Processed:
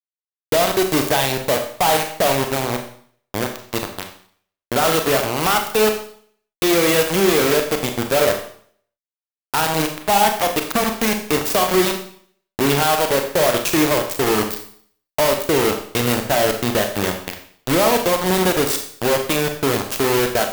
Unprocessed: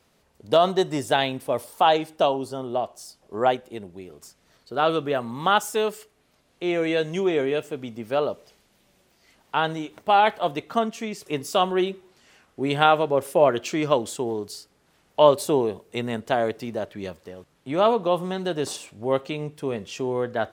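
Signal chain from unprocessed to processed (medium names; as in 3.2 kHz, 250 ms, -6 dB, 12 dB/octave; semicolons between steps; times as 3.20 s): compression 3:1, threshold -27 dBFS, peak gain reduction 13 dB; 2.65–3.55 s: Gaussian low-pass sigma 17 samples; bit crusher 5-bit; fuzz box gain 48 dB, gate -57 dBFS; Schroeder reverb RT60 0.56 s, combs from 29 ms, DRR 4.5 dB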